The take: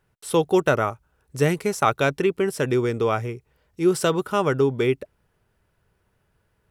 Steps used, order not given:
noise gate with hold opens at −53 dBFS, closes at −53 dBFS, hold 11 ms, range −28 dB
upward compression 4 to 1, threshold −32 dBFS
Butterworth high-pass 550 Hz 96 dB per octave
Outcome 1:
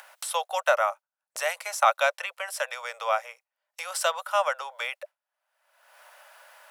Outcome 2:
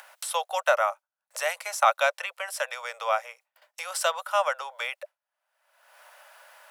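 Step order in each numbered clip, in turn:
Butterworth high-pass, then noise gate with hold, then upward compression
noise gate with hold, then Butterworth high-pass, then upward compression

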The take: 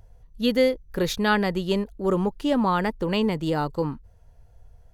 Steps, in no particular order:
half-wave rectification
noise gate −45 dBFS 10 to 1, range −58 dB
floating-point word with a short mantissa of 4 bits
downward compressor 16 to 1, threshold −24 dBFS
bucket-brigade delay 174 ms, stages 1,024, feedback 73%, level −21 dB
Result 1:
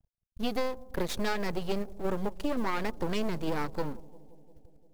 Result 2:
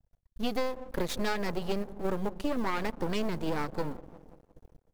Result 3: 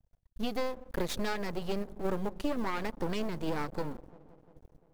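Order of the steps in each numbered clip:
half-wave rectification, then downward compressor, then noise gate, then bucket-brigade delay, then floating-point word with a short mantissa
floating-point word with a short mantissa, then bucket-brigade delay, then noise gate, then half-wave rectification, then downward compressor
floating-point word with a short mantissa, then downward compressor, then noise gate, then bucket-brigade delay, then half-wave rectification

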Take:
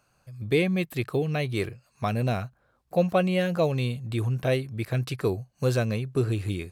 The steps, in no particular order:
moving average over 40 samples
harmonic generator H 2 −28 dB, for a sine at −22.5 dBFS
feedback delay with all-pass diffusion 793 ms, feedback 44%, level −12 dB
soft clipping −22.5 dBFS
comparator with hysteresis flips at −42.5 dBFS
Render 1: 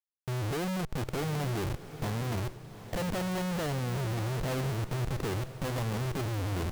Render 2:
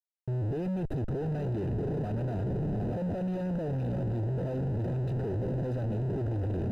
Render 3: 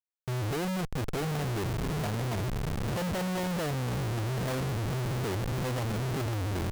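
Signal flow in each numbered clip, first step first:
harmonic generator, then soft clipping, then moving average, then comparator with hysteresis, then feedback delay with all-pass diffusion
feedback delay with all-pass diffusion, then harmonic generator, then comparator with hysteresis, then moving average, then soft clipping
moving average, then harmonic generator, then soft clipping, then feedback delay with all-pass diffusion, then comparator with hysteresis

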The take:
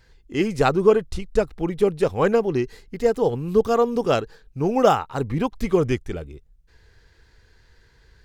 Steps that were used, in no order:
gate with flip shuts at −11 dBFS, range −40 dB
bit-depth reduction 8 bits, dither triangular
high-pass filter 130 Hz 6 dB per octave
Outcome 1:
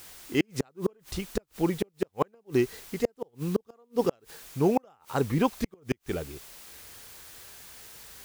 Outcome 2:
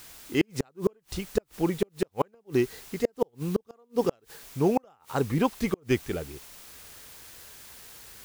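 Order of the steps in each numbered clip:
bit-depth reduction, then gate with flip, then high-pass filter
high-pass filter, then bit-depth reduction, then gate with flip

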